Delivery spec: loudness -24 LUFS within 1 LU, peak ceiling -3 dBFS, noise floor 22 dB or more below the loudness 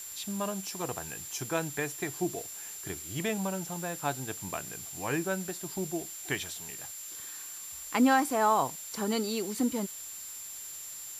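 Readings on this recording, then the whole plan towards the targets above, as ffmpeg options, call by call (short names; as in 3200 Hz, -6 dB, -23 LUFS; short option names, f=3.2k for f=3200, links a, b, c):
steady tone 7300 Hz; tone level -42 dBFS; noise floor -43 dBFS; noise floor target -55 dBFS; loudness -32.5 LUFS; peak -13.0 dBFS; loudness target -24.0 LUFS
-> -af "bandreject=f=7.3k:w=30"
-af "afftdn=nr=12:nf=-43"
-af "volume=8.5dB"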